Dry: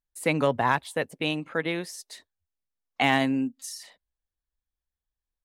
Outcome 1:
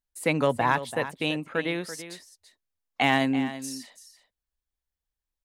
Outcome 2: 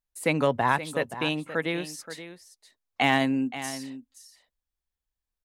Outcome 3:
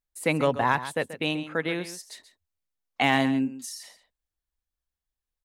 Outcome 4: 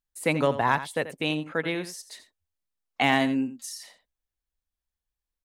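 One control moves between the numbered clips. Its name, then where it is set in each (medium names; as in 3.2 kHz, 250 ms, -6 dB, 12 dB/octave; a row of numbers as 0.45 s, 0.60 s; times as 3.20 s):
delay, time: 335 ms, 525 ms, 134 ms, 85 ms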